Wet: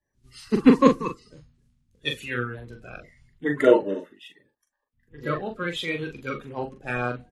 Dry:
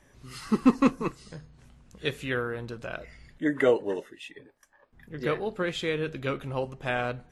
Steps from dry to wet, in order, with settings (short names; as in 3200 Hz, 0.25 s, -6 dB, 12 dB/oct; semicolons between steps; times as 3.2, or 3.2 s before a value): bin magnitudes rounded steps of 30 dB; doubler 41 ms -6 dB; three-band expander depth 70%